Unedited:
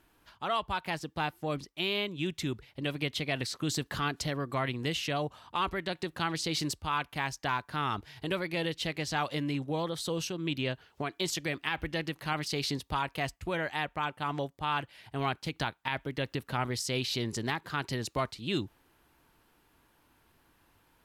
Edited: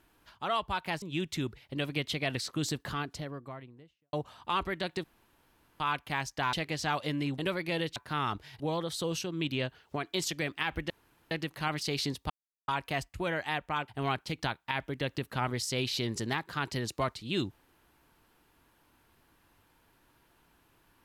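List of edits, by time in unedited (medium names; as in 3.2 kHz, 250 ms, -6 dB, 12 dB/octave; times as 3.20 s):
1.02–2.08 s: delete
3.51–5.19 s: studio fade out
6.10–6.86 s: room tone
7.59–8.23 s: swap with 8.81–9.66 s
11.96 s: insert room tone 0.41 s
12.95 s: insert silence 0.38 s
14.15–15.05 s: delete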